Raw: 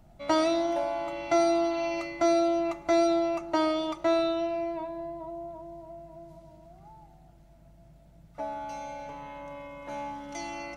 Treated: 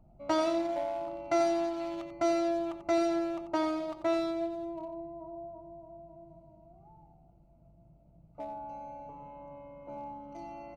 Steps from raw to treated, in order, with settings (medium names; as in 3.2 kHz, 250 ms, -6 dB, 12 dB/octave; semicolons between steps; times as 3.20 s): local Wiener filter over 25 samples; on a send: delay 90 ms -10 dB; on the sum: trim -3.5 dB